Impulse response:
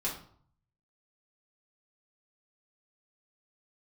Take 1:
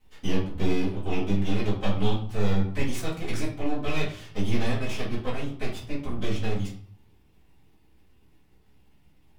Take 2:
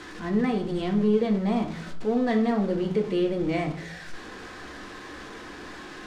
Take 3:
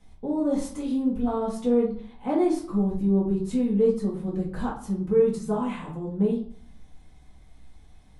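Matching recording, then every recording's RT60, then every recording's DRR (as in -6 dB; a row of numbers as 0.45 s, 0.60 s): 3; 0.55 s, 0.55 s, 0.55 s; -12.0 dB, 3.0 dB, -6.0 dB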